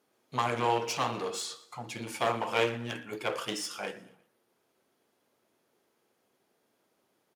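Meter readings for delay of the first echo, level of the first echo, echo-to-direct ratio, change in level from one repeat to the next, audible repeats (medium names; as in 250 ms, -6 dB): 118 ms, -21.0 dB, -20.0 dB, -6.5 dB, 3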